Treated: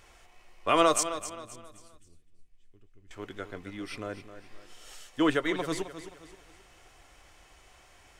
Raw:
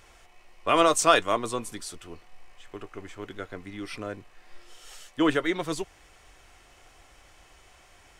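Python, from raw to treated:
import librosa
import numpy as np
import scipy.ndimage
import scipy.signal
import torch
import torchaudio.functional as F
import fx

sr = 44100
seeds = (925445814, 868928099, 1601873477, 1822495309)

y = fx.tone_stack(x, sr, knobs='10-0-1', at=(1.03, 3.11))
y = fx.echo_feedback(y, sr, ms=263, feedback_pct=37, wet_db=-12.0)
y = F.gain(torch.from_numpy(y), -2.0).numpy()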